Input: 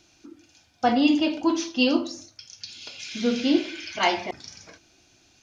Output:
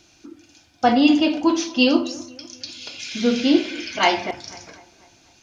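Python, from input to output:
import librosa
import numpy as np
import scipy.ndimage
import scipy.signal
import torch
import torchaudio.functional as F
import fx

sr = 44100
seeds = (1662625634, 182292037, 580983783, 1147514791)

y = fx.echo_bbd(x, sr, ms=247, stages=4096, feedback_pct=50, wet_db=-20.5)
y = y * 10.0 ** (4.5 / 20.0)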